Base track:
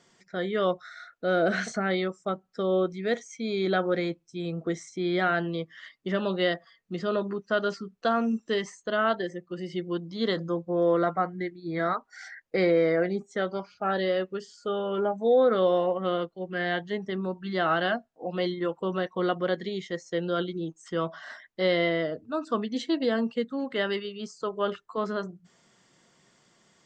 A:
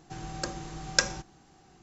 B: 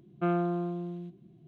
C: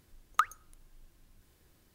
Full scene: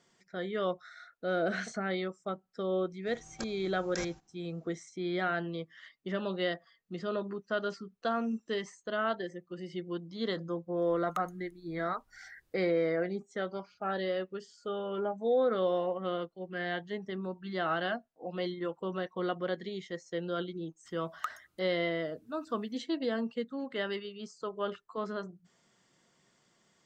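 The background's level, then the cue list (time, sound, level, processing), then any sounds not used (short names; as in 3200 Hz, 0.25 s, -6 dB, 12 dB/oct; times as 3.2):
base track -6.5 dB
2.97 add A -2.5 dB, fades 0.10 s + level quantiser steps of 18 dB
10.77 add C -11 dB
20.85 add C -9.5 dB + HPF 83 Hz
not used: B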